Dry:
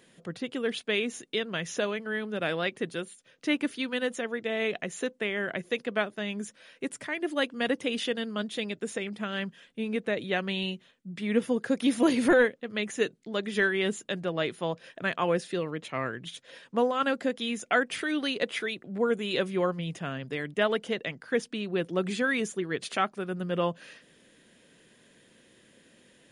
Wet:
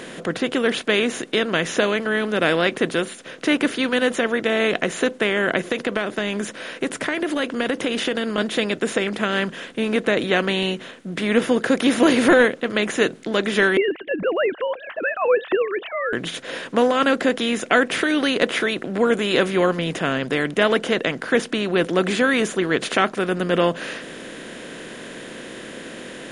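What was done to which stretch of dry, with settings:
5.70–8.38 s: compression, threshold -31 dBFS
13.77–16.13 s: formants replaced by sine waves
whole clip: spectral levelling over time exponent 0.6; trim +5 dB

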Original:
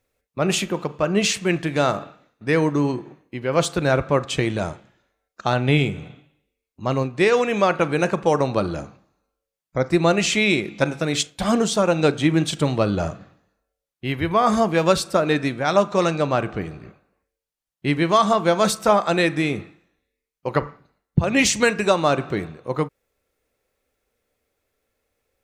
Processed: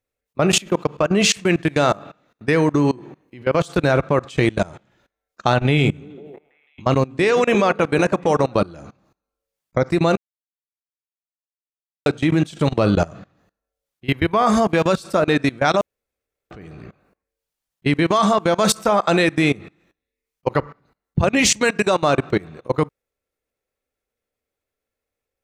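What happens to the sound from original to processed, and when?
5.68–8.55 s: repeats whose band climbs or falls 165 ms, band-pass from 210 Hz, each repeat 0.7 oct, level -9.5 dB
10.17–12.06 s: mute
15.81–16.51 s: room tone
whole clip: level held to a coarse grid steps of 23 dB; trim +7.5 dB

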